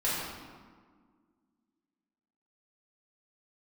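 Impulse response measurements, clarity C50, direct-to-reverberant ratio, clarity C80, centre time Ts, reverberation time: -1.5 dB, -9.0 dB, 0.5 dB, 0.103 s, 1.7 s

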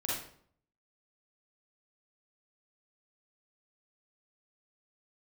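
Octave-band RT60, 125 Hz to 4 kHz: 0.80, 0.65, 0.60, 0.55, 0.50, 0.45 s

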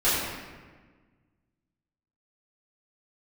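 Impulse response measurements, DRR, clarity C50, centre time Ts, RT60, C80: -12.5 dB, -1.0 dB, 98 ms, 1.4 s, 1.0 dB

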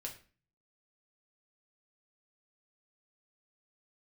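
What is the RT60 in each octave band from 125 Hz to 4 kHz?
0.70, 0.55, 0.40, 0.35, 0.40, 0.35 s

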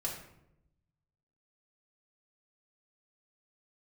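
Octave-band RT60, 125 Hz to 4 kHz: 1.5, 1.1, 0.90, 0.75, 0.65, 0.50 s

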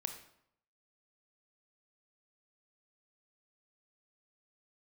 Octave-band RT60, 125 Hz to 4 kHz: 0.80, 0.75, 0.70, 0.75, 0.60, 0.55 s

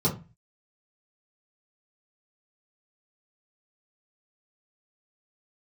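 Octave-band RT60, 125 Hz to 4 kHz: 0.50, 0.40, 0.30, 0.30, 0.30, 0.20 s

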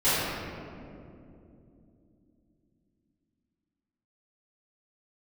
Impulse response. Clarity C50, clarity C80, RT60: -5.0 dB, -2.0 dB, 2.8 s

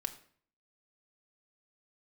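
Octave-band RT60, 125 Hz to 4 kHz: 0.65, 0.60, 0.55, 0.50, 0.50, 0.40 s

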